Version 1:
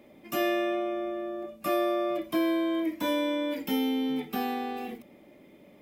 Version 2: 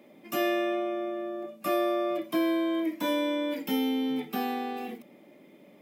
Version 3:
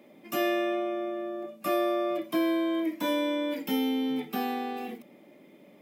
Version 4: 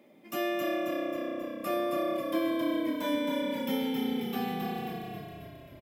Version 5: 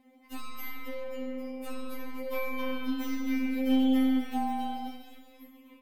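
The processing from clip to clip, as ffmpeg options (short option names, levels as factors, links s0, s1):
-af "highpass=f=140:w=0.5412,highpass=f=140:w=1.3066"
-af anull
-filter_complex "[0:a]asplit=9[s0][s1][s2][s3][s4][s5][s6][s7][s8];[s1]adelay=269,afreqshift=-31,volume=0.631[s9];[s2]adelay=538,afreqshift=-62,volume=0.367[s10];[s3]adelay=807,afreqshift=-93,volume=0.211[s11];[s4]adelay=1076,afreqshift=-124,volume=0.123[s12];[s5]adelay=1345,afreqshift=-155,volume=0.0716[s13];[s6]adelay=1614,afreqshift=-186,volume=0.0412[s14];[s7]adelay=1883,afreqshift=-217,volume=0.024[s15];[s8]adelay=2152,afreqshift=-248,volume=0.014[s16];[s0][s9][s10][s11][s12][s13][s14][s15][s16]amix=inputs=9:normalize=0,volume=0.631"
-af "aeval=exprs='0.133*(cos(1*acos(clip(val(0)/0.133,-1,1)))-cos(1*PI/2))+0.0075*(cos(4*acos(clip(val(0)/0.133,-1,1)))-cos(4*PI/2))+0.015*(cos(6*acos(clip(val(0)/0.133,-1,1)))-cos(6*PI/2))':c=same,afftfilt=real='re*3.46*eq(mod(b,12),0)':imag='im*3.46*eq(mod(b,12),0)':win_size=2048:overlap=0.75"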